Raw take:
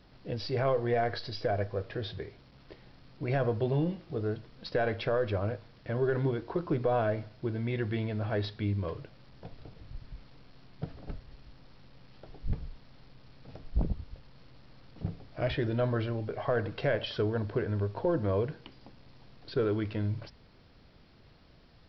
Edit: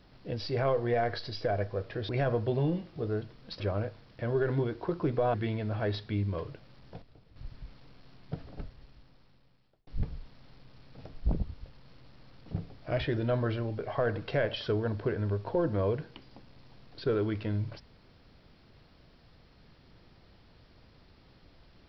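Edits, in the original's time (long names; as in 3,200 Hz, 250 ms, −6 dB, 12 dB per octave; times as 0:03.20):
0:02.09–0:03.23: remove
0:04.74–0:05.27: remove
0:07.01–0:07.84: remove
0:09.52–0:09.86: clip gain −9.5 dB
0:10.97–0:12.37: fade out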